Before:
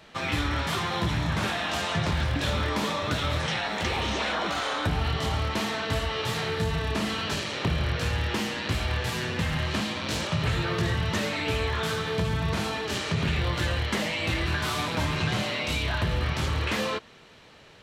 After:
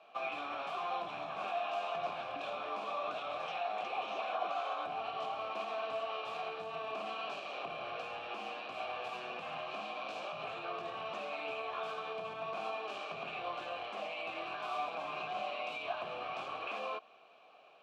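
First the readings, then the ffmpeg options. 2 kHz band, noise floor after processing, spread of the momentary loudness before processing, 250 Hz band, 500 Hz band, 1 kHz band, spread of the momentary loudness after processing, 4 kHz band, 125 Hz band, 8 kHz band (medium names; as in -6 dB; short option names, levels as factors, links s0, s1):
-13.5 dB, -60 dBFS, 2 LU, -23.0 dB, -8.0 dB, -5.5 dB, 4 LU, -16.0 dB, -34.5 dB, under -25 dB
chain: -filter_complex "[0:a]highpass=180,alimiter=limit=0.0794:level=0:latency=1:release=83,asplit=3[s0][s1][s2];[s0]bandpass=f=730:t=q:w=8,volume=1[s3];[s1]bandpass=f=1090:t=q:w=8,volume=0.501[s4];[s2]bandpass=f=2440:t=q:w=8,volume=0.355[s5];[s3][s4][s5]amix=inputs=3:normalize=0,volume=1.58"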